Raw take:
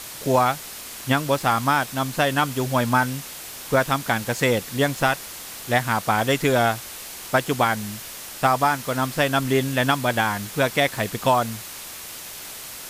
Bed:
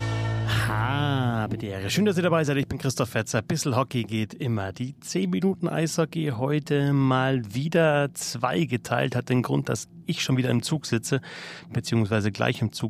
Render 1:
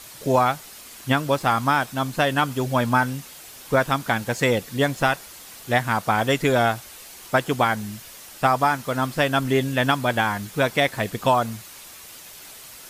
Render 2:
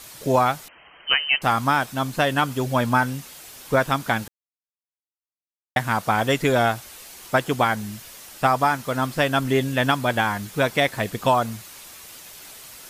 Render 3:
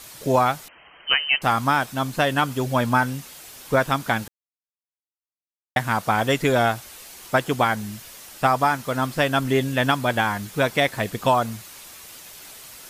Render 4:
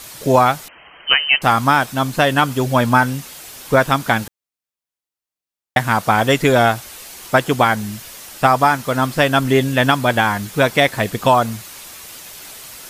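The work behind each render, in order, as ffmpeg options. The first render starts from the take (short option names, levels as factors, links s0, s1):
-af "afftdn=nr=7:nf=-37"
-filter_complex "[0:a]asettb=1/sr,asplit=3[s0][s1][s2];[s0]atrim=end=0.684[s3];[s1]atrim=start=0.68:end=1.42,asetpts=PTS-STARTPTS,afade=t=in:d=0.004:c=qsin,afade=t=out:st=0.736:d=0.004:c=qsin,lowpass=f=2700:t=q:w=0.5098,lowpass=f=2700:t=q:w=0.6013,lowpass=f=2700:t=q:w=0.9,lowpass=f=2700:t=q:w=2.563,afreqshift=-3200[s4];[s2]atrim=start=1.416[s5];[s3][s4]acrossfade=d=0.004:c1=hsin:c2=qsin[s6];[s6][s5]acrossfade=d=0.004:c1=qsin:c2=hsin,asplit=3[s7][s8][s9];[s7]atrim=end=4.28,asetpts=PTS-STARTPTS,afade=t=out:st=4.276:d=0.004:c=hsin[s10];[s8]atrim=start=4.28:end=5.76,asetpts=PTS-STARTPTS,volume=0[s11];[s9]atrim=start=5.76,asetpts=PTS-STARTPTS,afade=t=in:d=0.004:c=hsin[s12];[s10][s11][s12]concat=n=3:v=0:a=1"
-af anull
-af "volume=2,alimiter=limit=0.891:level=0:latency=1"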